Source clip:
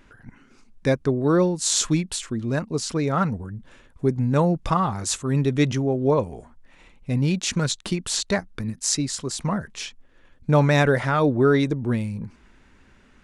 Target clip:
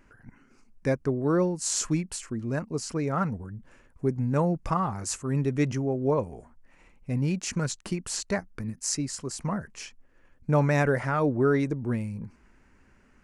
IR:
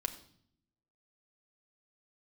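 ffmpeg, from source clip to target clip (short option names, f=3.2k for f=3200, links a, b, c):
-af "equalizer=f=3.6k:t=o:w=0.41:g=-13,volume=-5dB"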